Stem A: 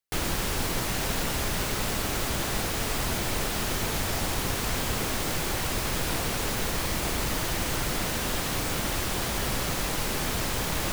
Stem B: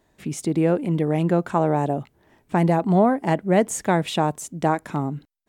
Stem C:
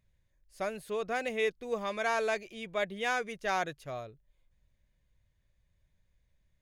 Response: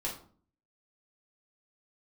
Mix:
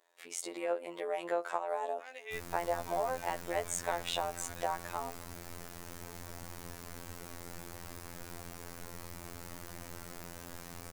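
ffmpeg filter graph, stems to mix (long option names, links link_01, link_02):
-filter_complex "[0:a]equalizer=frequency=3300:width=1.4:gain=-7,adelay=2200,volume=-14dB[link_01];[1:a]highpass=frequency=500:width=0.5412,highpass=frequency=500:width=1.3066,acompressor=threshold=-25dB:ratio=6,volume=-2.5dB,asplit=3[link_02][link_03][link_04];[link_03]volume=-19dB[link_05];[2:a]highpass=710,alimiter=level_in=3dB:limit=-24dB:level=0:latency=1,volume=-3dB,adelay=900,volume=-3dB[link_06];[link_04]apad=whole_len=331392[link_07];[link_06][link_07]sidechaincompress=threshold=-38dB:ratio=8:attack=42:release=462[link_08];[3:a]atrim=start_sample=2205[link_09];[link_05][link_09]afir=irnorm=-1:irlink=0[link_10];[link_01][link_02][link_08][link_10]amix=inputs=4:normalize=0,afftfilt=real='hypot(re,im)*cos(PI*b)':imag='0':win_size=2048:overlap=0.75"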